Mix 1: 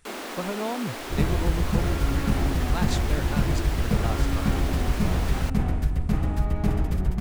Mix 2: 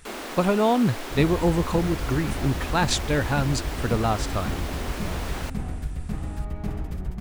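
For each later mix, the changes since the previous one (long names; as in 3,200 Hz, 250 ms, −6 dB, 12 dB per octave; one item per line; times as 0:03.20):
speech +10.0 dB
second sound −6.5 dB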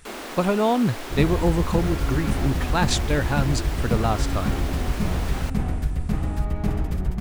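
second sound +6.0 dB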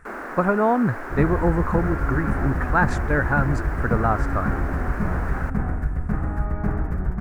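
master: add high shelf with overshoot 2,300 Hz −13.5 dB, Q 3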